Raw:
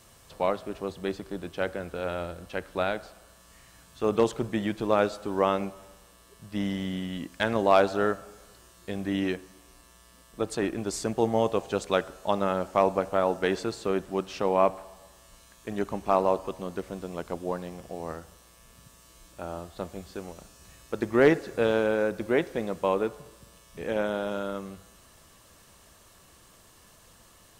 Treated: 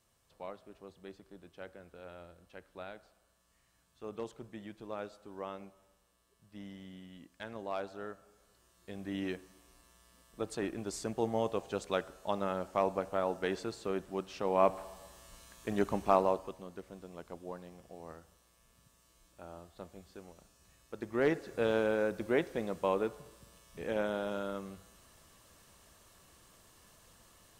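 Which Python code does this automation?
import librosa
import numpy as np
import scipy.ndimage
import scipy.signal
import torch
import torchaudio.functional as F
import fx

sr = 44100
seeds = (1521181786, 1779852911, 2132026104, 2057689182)

y = fx.gain(x, sr, db=fx.line((8.09, -18.0), (9.36, -8.0), (14.42, -8.0), (14.83, -1.0), (16.02, -1.0), (16.67, -12.5), (20.97, -12.5), (21.76, -5.5)))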